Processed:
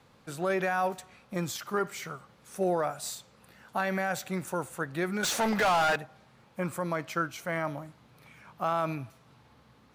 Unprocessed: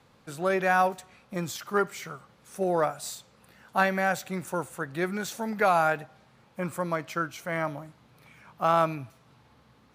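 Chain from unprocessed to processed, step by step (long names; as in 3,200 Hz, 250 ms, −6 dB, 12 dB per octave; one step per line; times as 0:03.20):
brickwall limiter −19 dBFS, peak gain reduction 9 dB
0:05.23–0:05.96: mid-hump overdrive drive 24 dB, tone 4,900 Hz, clips at −19 dBFS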